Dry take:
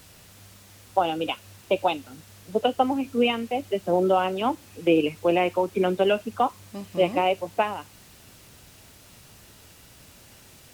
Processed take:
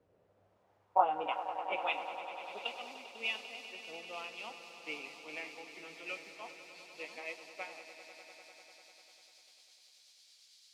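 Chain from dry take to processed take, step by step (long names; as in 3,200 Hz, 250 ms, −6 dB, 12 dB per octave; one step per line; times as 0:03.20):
pitch glide at a constant tempo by −3.5 semitones starting unshifted
band-pass filter sweep 470 Hz → 4,500 Hz, 0:00.15–0:02.82
echo that builds up and dies away 99 ms, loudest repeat 5, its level −13 dB
multiband upward and downward expander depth 40%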